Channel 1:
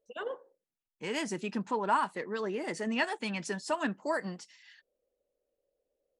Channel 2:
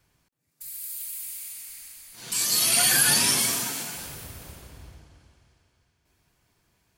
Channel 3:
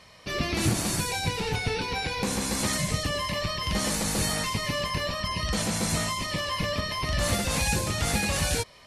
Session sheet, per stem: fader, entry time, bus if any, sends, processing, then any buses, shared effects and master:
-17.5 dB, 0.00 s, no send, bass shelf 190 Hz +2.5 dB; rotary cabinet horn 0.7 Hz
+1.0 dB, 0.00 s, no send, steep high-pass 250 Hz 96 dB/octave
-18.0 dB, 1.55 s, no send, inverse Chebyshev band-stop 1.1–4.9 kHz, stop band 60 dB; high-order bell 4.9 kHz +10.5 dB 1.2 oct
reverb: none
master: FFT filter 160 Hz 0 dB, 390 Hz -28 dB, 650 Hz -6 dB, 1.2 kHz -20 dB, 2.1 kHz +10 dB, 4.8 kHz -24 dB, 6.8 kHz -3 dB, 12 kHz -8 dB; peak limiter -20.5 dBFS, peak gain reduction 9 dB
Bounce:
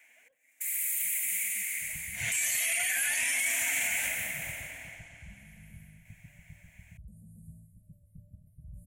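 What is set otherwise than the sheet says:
stem 2 +1.0 dB -> +12.5 dB; stem 3: missing high-order bell 4.9 kHz +10.5 dB 1.2 oct

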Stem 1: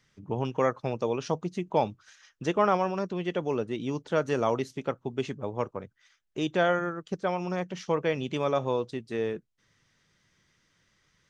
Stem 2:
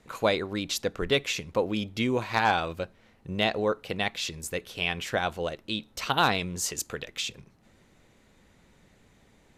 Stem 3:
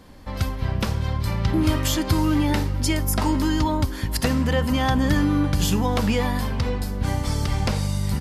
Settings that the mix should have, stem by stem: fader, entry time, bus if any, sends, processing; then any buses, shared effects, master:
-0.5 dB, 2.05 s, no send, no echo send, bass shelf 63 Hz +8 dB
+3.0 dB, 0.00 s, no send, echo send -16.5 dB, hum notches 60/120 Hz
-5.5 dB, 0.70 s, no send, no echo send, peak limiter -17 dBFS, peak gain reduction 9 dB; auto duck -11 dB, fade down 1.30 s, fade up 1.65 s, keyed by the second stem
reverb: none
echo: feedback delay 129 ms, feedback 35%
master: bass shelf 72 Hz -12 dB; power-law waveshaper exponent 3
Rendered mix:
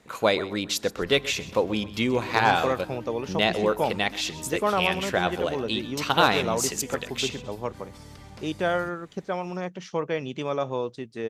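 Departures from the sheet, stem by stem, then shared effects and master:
stem 2: missing hum notches 60/120 Hz; master: missing power-law waveshaper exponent 3

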